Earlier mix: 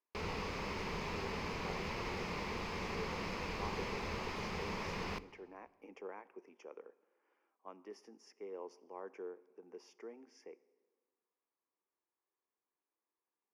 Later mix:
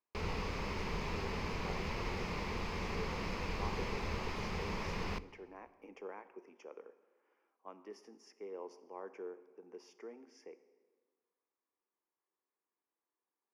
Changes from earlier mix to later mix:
speech: send +6.0 dB
background: add low-shelf EQ 91 Hz +9 dB

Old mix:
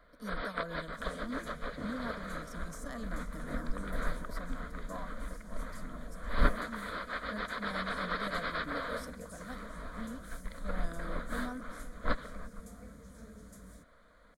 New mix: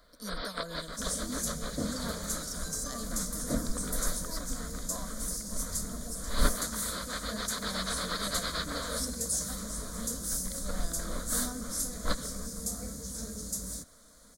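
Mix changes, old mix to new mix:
second sound +9.5 dB
master: add high shelf with overshoot 3,500 Hz +13.5 dB, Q 1.5

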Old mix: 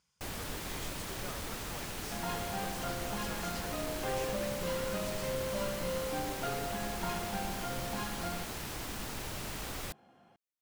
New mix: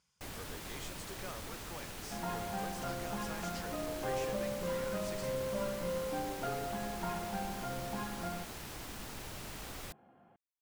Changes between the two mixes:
first sound −5.0 dB
second sound: add Gaussian smoothing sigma 3.4 samples

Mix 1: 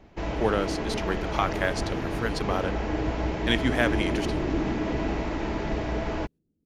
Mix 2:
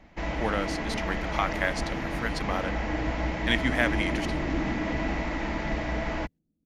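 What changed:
speech: send −11.0 dB
master: add thirty-one-band graphic EQ 100 Hz −11 dB, 400 Hz −11 dB, 2,000 Hz +7 dB

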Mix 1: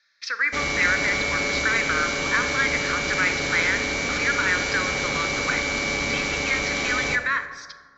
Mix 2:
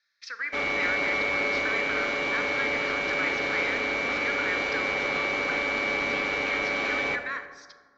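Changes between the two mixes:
speech −9.5 dB
background: add three-way crossover with the lows and the highs turned down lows −13 dB, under 270 Hz, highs −22 dB, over 3,500 Hz

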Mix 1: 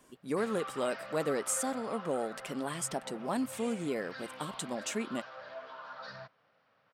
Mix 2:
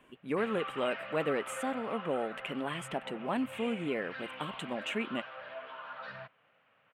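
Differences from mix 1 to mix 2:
background: add high-shelf EQ 5,300 Hz +4.5 dB
master: add high shelf with overshoot 3,800 Hz −11 dB, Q 3

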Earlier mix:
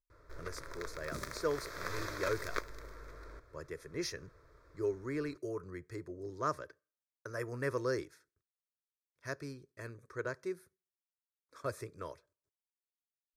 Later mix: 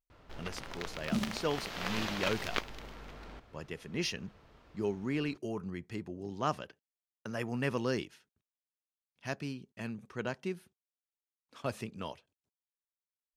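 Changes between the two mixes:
speech: send off
master: remove phaser with its sweep stopped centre 790 Hz, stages 6

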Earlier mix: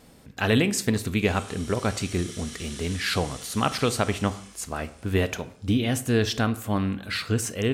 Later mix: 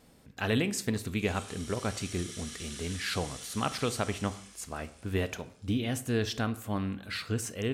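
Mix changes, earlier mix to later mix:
speech −7.0 dB
background: send −8.0 dB

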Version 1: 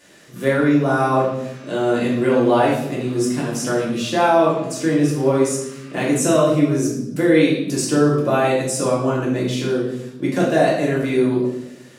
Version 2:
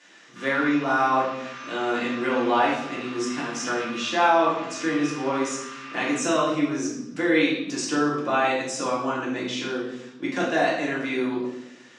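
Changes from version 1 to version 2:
background: send +11.5 dB
master: add loudspeaker in its box 360–6,300 Hz, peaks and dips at 410 Hz −9 dB, 590 Hz −10 dB, 4,500 Hz −5 dB

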